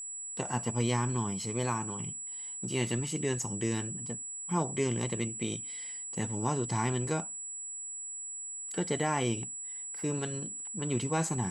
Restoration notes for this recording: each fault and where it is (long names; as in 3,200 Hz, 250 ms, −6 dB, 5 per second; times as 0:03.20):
whistle 7,800 Hz −38 dBFS